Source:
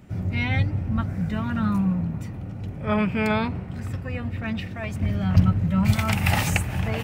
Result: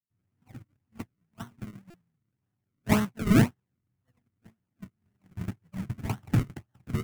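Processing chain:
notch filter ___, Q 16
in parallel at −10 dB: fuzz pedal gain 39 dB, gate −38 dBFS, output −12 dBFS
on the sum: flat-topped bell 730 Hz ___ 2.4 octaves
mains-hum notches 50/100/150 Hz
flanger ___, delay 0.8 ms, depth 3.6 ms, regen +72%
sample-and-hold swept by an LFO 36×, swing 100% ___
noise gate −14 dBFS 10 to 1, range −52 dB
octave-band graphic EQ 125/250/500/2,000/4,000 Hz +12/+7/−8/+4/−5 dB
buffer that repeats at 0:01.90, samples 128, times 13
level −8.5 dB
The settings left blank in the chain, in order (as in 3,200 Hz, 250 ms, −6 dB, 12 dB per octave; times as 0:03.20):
1,500 Hz, +11 dB, 0.5 Hz, 1.9 Hz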